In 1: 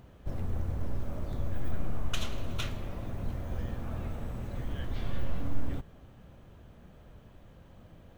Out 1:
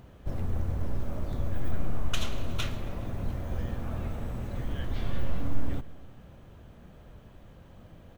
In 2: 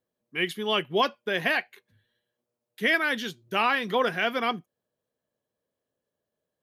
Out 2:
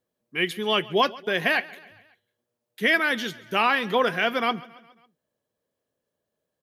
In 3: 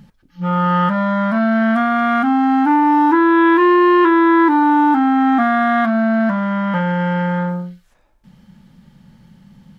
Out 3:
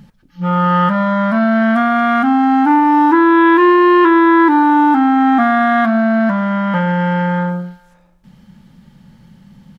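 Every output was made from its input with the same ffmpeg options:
ffmpeg -i in.wav -af "aecho=1:1:137|274|411|548:0.0891|0.049|0.027|0.0148,volume=2.5dB" out.wav

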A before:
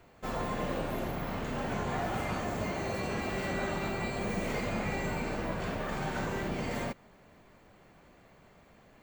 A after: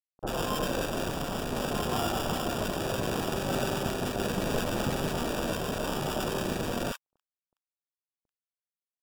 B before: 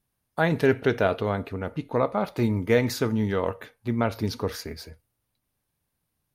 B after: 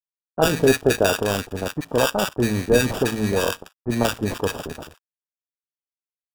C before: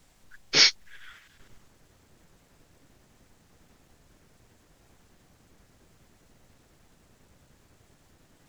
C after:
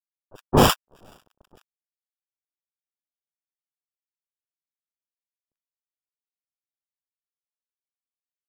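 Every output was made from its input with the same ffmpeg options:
ffmpeg -i in.wav -filter_complex "[0:a]bass=frequency=250:gain=-4,treble=frequency=4000:gain=4,bandreject=frequency=55.36:width_type=h:width=4,bandreject=frequency=110.72:width_type=h:width=4,bandreject=frequency=166.08:width_type=h:width=4,bandreject=frequency=221.44:width_type=h:width=4,bandreject=frequency=276.8:width_type=h:width=4,asplit=2[link_01][link_02];[link_02]acompressor=threshold=-43dB:ratio=4,volume=2.5dB[link_03];[link_01][link_03]amix=inputs=2:normalize=0,acrusher=bits=6:mix=0:aa=0.000001,aresample=16000,aeval=exprs='sgn(val(0))*max(abs(val(0))-0.0126,0)':channel_layout=same,aresample=44100,acrusher=samples=21:mix=1:aa=0.000001,acrossover=split=1100[link_04][link_05];[link_05]adelay=40[link_06];[link_04][link_06]amix=inputs=2:normalize=0,alimiter=level_in=8.5dB:limit=-1dB:release=50:level=0:latency=1,volume=-2.5dB" -ar 44100 -c:a libmp3lame -b:a 112k out.mp3

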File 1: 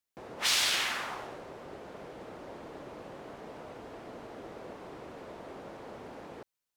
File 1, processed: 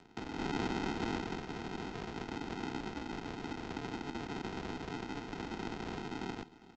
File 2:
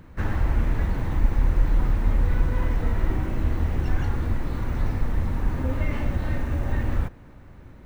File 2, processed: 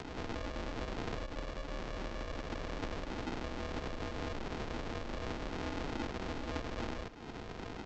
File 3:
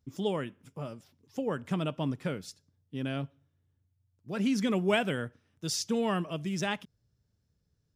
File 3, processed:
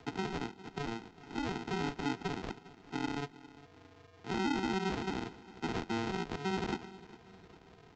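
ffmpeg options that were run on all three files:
ffmpeg -i in.wav -filter_complex "[0:a]aemphasis=mode=production:type=75fm,bandreject=frequency=404.7:width_type=h:width=4,bandreject=frequency=809.4:width_type=h:width=4,bandreject=frequency=1214.1:width_type=h:width=4,aresample=16000,acrusher=samples=28:mix=1:aa=0.000001,aresample=44100,acompressor=threshold=-36dB:ratio=8,alimiter=level_in=8.5dB:limit=-24dB:level=0:latency=1:release=48,volume=-8.5dB,acompressor=mode=upward:threshold=-48dB:ratio=2.5,acrossover=split=220 5700:gain=0.224 1 0.0708[link_01][link_02][link_03];[link_01][link_02][link_03]amix=inputs=3:normalize=0,aecho=1:1:404|808|1212|1616:0.119|0.0535|0.0241|0.0108,volume=9.5dB" out.wav

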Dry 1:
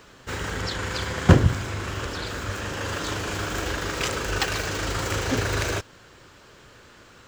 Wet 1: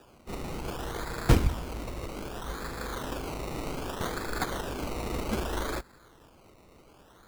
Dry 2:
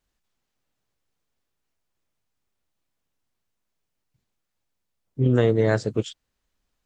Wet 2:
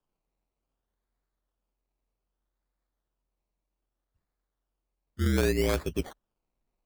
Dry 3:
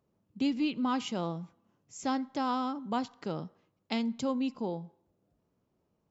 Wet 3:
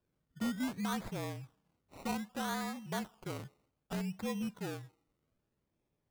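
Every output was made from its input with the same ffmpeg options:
ffmpeg -i in.wav -af "afreqshift=-45,acrusher=samples=21:mix=1:aa=0.000001:lfo=1:lforange=12.6:lforate=0.64,volume=-6dB" out.wav

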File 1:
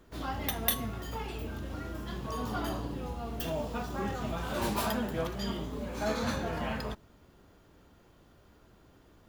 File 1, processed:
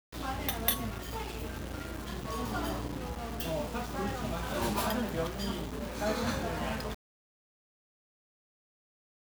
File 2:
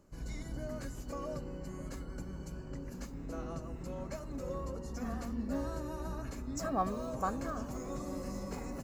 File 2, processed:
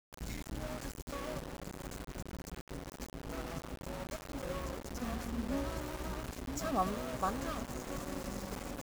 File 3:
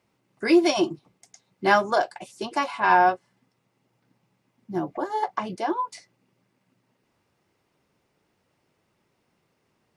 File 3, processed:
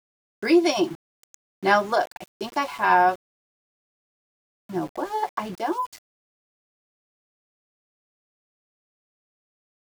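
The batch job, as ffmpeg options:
ffmpeg -i in.wav -af "aeval=exprs='val(0)*gte(abs(val(0)),0.0112)':channel_layout=same" out.wav

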